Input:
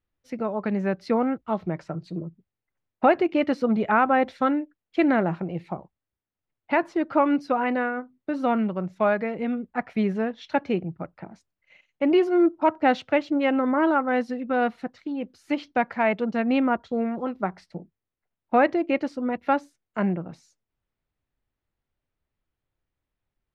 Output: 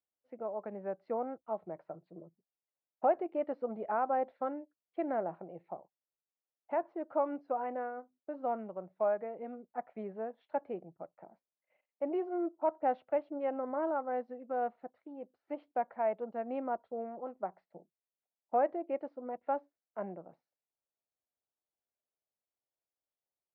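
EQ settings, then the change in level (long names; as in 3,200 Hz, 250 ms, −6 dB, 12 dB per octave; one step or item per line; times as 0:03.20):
resonant band-pass 650 Hz, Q 1.9
high-frequency loss of the air 210 metres
−6.5 dB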